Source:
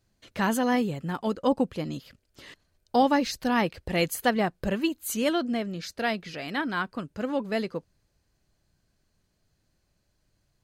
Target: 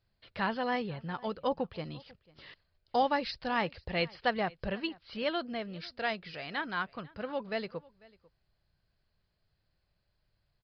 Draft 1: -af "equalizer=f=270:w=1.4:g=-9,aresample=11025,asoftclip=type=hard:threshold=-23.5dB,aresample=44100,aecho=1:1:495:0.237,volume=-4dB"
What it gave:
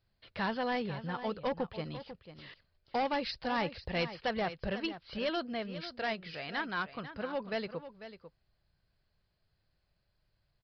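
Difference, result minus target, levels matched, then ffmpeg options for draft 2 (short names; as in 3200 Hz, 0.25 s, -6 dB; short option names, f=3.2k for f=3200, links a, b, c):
hard clip: distortion +29 dB; echo-to-direct +11.5 dB
-af "equalizer=f=270:w=1.4:g=-9,aresample=11025,asoftclip=type=hard:threshold=-14dB,aresample=44100,aecho=1:1:495:0.0631,volume=-4dB"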